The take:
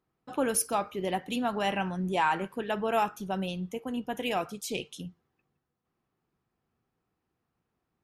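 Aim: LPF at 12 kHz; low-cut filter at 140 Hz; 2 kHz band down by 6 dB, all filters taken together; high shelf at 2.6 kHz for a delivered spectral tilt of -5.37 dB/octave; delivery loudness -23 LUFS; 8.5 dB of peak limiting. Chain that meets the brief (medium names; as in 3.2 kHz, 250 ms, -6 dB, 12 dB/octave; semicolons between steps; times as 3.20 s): high-pass 140 Hz; low-pass 12 kHz; peaking EQ 2 kHz -5 dB; treble shelf 2.6 kHz -7.5 dB; trim +12.5 dB; peak limiter -12.5 dBFS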